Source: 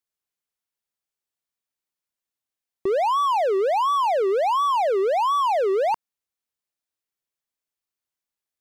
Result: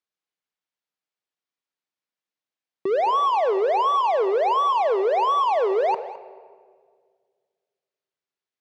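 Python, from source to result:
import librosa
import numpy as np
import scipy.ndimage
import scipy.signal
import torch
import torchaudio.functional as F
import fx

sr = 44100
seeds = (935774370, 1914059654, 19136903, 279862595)

p1 = fx.bandpass_edges(x, sr, low_hz=170.0, high_hz=4800.0)
p2 = p1 + fx.echo_single(p1, sr, ms=211, db=-17.0, dry=0)
y = fx.room_shoebox(p2, sr, seeds[0], volume_m3=2700.0, walls='mixed', distance_m=0.56)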